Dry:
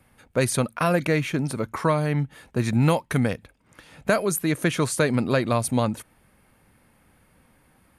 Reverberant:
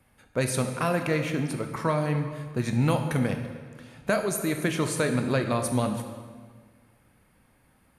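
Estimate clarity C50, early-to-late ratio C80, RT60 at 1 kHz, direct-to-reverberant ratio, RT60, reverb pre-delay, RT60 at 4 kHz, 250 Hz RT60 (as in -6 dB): 7.0 dB, 8.5 dB, 1.6 s, 5.5 dB, 1.6 s, 15 ms, 1.3 s, 1.9 s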